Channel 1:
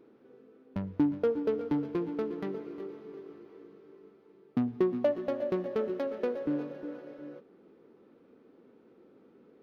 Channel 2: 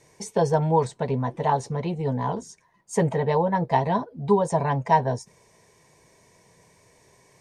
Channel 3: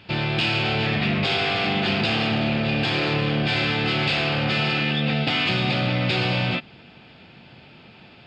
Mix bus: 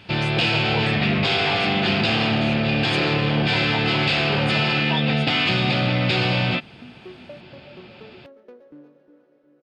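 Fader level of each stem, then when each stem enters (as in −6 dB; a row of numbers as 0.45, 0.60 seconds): −14.0, −11.5, +2.0 decibels; 2.25, 0.00, 0.00 seconds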